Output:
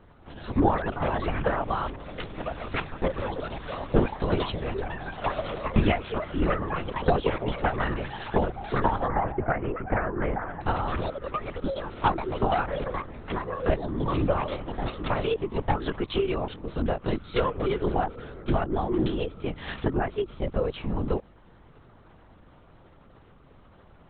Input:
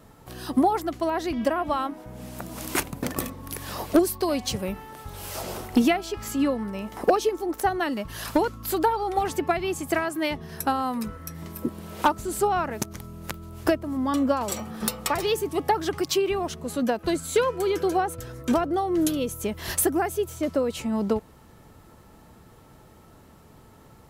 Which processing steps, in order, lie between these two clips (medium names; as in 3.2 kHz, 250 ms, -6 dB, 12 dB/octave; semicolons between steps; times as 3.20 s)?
ever faster or slower copies 246 ms, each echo +6 st, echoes 2, each echo -6 dB; LPC vocoder at 8 kHz whisper; 9.08–10.61 s: low-pass 1.9 kHz 24 dB/octave; trim -2 dB